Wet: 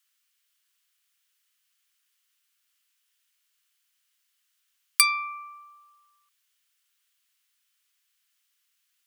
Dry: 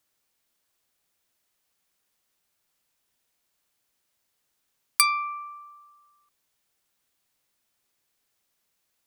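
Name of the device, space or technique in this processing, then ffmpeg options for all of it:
headphones lying on a table: -af "highpass=f=1.3k:w=0.5412,highpass=f=1.3k:w=1.3066,equalizer=f=3k:t=o:w=0.3:g=5,volume=1.5dB"

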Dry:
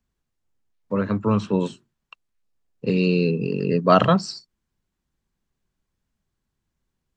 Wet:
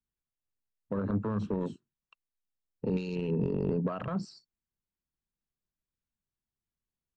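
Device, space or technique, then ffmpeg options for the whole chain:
de-esser from a sidechain: -filter_complex "[0:a]afwtdn=0.0251,asplit=2[a][b];[b]highpass=f=5.6k:p=1,apad=whole_len=315855[c];[a][c]sidechaincompress=threshold=-49dB:ratio=8:attack=1.4:release=41"

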